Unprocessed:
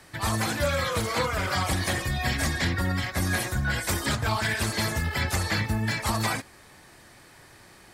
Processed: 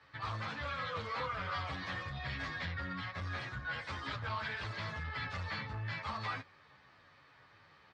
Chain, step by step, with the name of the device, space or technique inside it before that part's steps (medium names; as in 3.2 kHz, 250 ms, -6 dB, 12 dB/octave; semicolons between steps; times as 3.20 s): barber-pole flanger into a guitar amplifier (endless flanger 10.8 ms -1.8 Hz; saturation -25.5 dBFS, distortion -15 dB; cabinet simulation 82–4200 Hz, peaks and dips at 220 Hz -8 dB, 350 Hz -10 dB, 700 Hz -4 dB, 1.2 kHz +6 dB); trim -6.5 dB